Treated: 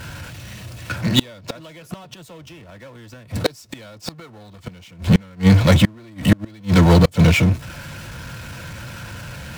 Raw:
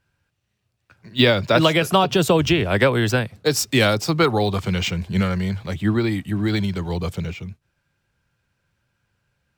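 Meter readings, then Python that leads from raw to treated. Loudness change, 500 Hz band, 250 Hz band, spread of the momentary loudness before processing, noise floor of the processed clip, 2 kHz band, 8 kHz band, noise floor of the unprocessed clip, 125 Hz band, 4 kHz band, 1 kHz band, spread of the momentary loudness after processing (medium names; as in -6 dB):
+3.0 dB, -5.0 dB, +2.5 dB, 10 LU, -45 dBFS, -3.0 dB, -3.5 dB, -74 dBFS, +5.0 dB, -3.0 dB, -5.0 dB, 22 LU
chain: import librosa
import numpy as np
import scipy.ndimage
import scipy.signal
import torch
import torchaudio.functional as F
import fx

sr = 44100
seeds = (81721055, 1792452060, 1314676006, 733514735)

y = fx.power_curve(x, sr, exponent=0.5)
y = fx.notch_comb(y, sr, f0_hz=400.0)
y = fx.gate_flip(y, sr, shuts_db=-8.0, range_db=-33)
y = y * 10.0 ** (4.5 / 20.0)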